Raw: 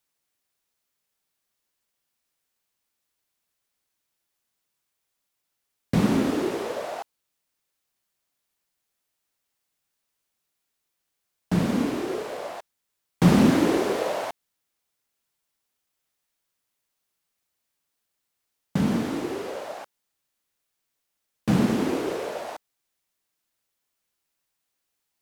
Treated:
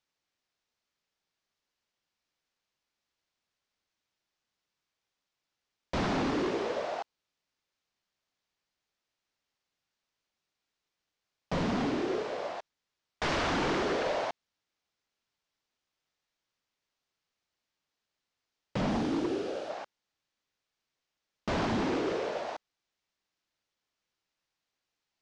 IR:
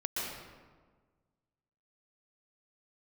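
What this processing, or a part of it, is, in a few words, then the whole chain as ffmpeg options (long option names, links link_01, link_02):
synthesiser wavefolder: -filter_complex "[0:a]asettb=1/sr,asplit=3[link_01][link_02][link_03];[link_01]atrim=end=18.904[link_04];[link_02]atrim=start=18.9:end=19.7,asetpts=PTS-STARTPTS,afade=type=in:duration=0.004:curve=qsin,afade=type=out:start_time=0.796:duration=0.004:curve=qsin,equalizer=frequency=315:width_type=o:width=0.33:gain=5,equalizer=frequency=1000:width_type=o:width=0.33:gain=-12,equalizer=frequency=2000:width_type=o:width=0.33:gain=-8,equalizer=frequency=10000:width_type=o:width=0.33:gain=9[link_05];[link_03]atrim=start=19.696[link_06];[link_04][link_05]acrossfade=duration=0.004:curve1=hsin:curve2=qsin[link_07];[link_07][link_06]acrossfade=duration=0.004:curve1=qsin:curve2=hsin,aeval=exprs='0.075*(abs(mod(val(0)/0.075+3,4)-2)-1)':channel_layout=same,lowpass=frequency=6000:width=0.5412,lowpass=frequency=6000:width=1.3066,volume=-2dB"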